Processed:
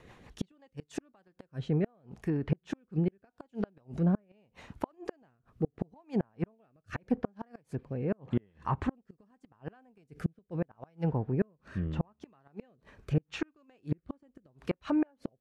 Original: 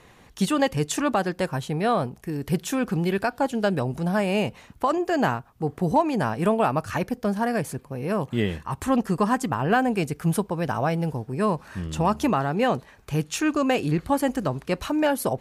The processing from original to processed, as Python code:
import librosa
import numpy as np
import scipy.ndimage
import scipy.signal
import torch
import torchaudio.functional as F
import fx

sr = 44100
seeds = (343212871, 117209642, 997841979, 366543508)

y = fx.high_shelf(x, sr, hz=5000.0, db=-10.0)
y = fx.gate_flip(y, sr, shuts_db=-16.0, range_db=-38)
y = fx.env_lowpass_down(y, sr, base_hz=1800.0, full_db=-26.5)
y = fx.rotary_switch(y, sr, hz=6.0, then_hz=0.8, switch_at_s=0.44)